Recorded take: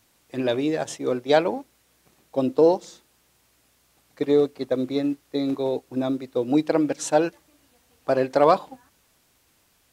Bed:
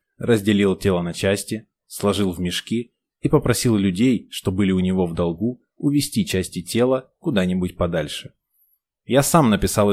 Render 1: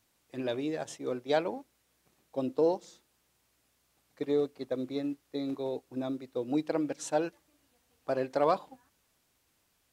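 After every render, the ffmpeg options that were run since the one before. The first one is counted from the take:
-af "volume=-9.5dB"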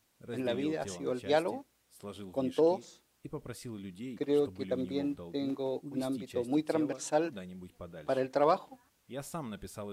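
-filter_complex "[1:a]volume=-25dB[a];[0:a][a]amix=inputs=2:normalize=0"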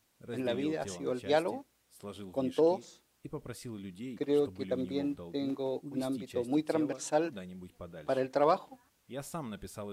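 -af anull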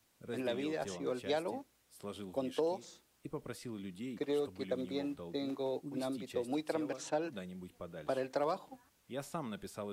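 -filter_complex "[0:a]acrossover=split=140|490|5100[a][b][c][d];[a]acompressor=threshold=-59dB:ratio=4[e];[b]acompressor=threshold=-39dB:ratio=4[f];[c]acompressor=threshold=-35dB:ratio=4[g];[d]acompressor=threshold=-54dB:ratio=4[h];[e][f][g][h]amix=inputs=4:normalize=0"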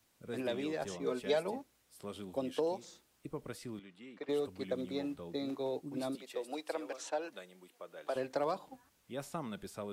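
-filter_complex "[0:a]asettb=1/sr,asplit=3[a][b][c];[a]atrim=end=1.014[d];[b]atrim=start=1.01:end=1.56,asetpts=PTS-STARTPTS,afade=t=in:d=0.004:c=qsin,afade=t=out:st=0.546:d=0.004:c=qsin,aecho=1:1:4.7:0.65,atrim=end_sample=24255[e];[c]atrim=start=1.556[f];[d][e]acrossfade=d=0.004:c1=hsin:c2=qsin[g];[g][f]acrossfade=d=0.004:c1=qsin:c2=hsin,asettb=1/sr,asplit=3[h][i][j];[h]atrim=end=3.794[k];[i]atrim=start=3.79:end=4.29,asetpts=PTS-STARTPTS,afade=t=in:d=0.004:c=qsin,afade=t=out:st=0.496:d=0.004:c=qsin,bandpass=f=1.3k:t=q:w=0.63[l];[j]atrim=start=4.286[m];[k][l]acrossfade=d=0.004:c1=hsin:c2=qsin[n];[n][m]acrossfade=d=0.004:c1=qsin:c2=hsin,asettb=1/sr,asplit=3[o][p][q];[o]atrim=end=6.154[r];[p]atrim=start=6.15:end=8.16,asetpts=PTS-STARTPTS,afade=t=in:d=0.004:c=qsin,afade=t=out:st=2.006:d=0.004:c=qsin,highpass=460[s];[q]atrim=start=8.156[t];[r][s]acrossfade=d=0.004:c1=hsin:c2=qsin[u];[u][t]acrossfade=d=0.004:c1=qsin:c2=hsin"

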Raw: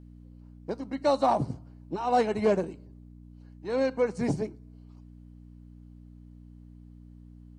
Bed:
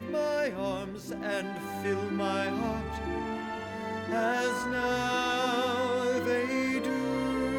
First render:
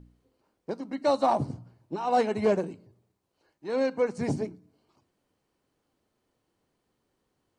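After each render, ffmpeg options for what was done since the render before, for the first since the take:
-af "bandreject=f=60:t=h:w=4,bandreject=f=120:t=h:w=4,bandreject=f=180:t=h:w=4,bandreject=f=240:t=h:w=4,bandreject=f=300:t=h:w=4"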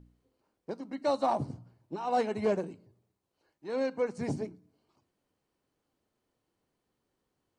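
-af "volume=-4.5dB"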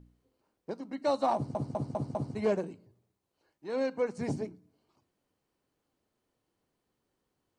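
-filter_complex "[0:a]asplit=6[a][b][c][d][e][f];[a]atrim=end=1.552[g];[b]atrim=start=1.348:end=1.552[h];[c]atrim=start=1.348:end=1.552[i];[d]atrim=start=1.348:end=1.552[j];[e]atrim=start=1.348:end=1.552[k];[f]atrim=start=2.348[l];[g][h]acrossfade=d=0.004:c1=hsin:c2=hsin[m];[m][i]acrossfade=d=0.004:c1=hsin:c2=hsin[n];[n][j]acrossfade=d=0.004:c1=hsin:c2=hsin[o];[o][k]acrossfade=d=0.004:c1=hsin:c2=hsin[p];[p][l]acrossfade=d=0.004:c1=hsin:c2=hsin"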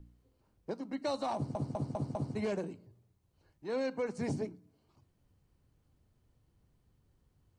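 -filter_complex "[0:a]acrossover=split=130|1900[a][b][c];[a]acompressor=mode=upward:threshold=-52dB:ratio=2.5[d];[b]alimiter=level_in=3.5dB:limit=-24dB:level=0:latency=1,volume=-3.5dB[e];[d][e][c]amix=inputs=3:normalize=0"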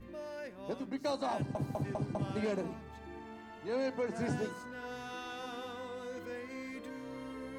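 -filter_complex "[1:a]volume=-14.5dB[a];[0:a][a]amix=inputs=2:normalize=0"

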